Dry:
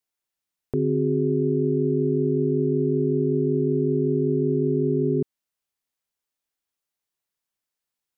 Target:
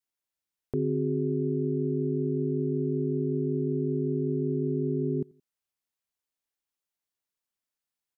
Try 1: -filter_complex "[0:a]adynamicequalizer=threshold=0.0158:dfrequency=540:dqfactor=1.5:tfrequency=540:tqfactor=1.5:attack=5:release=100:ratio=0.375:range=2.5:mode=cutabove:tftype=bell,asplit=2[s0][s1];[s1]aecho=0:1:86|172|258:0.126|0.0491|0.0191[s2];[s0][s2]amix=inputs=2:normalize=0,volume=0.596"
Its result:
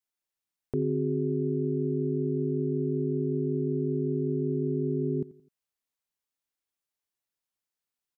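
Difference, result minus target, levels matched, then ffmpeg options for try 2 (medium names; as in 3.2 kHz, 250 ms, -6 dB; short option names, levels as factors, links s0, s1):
echo-to-direct +7.5 dB
-filter_complex "[0:a]adynamicequalizer=threshold=0.0158:dfrequency=540:dqfactor=1.5:tfrequency=540:tqfactor=1.5:attack=5:release=100:ratio=0.375:range=2.5:mode=cutabove:tftype=bell,asplit=2[s0][s1];[s1]aecho=0:1:86|172:0.0531|0.0207[s2];[s0][s2]amix=inputs=2:normalize=0,volume=0.596"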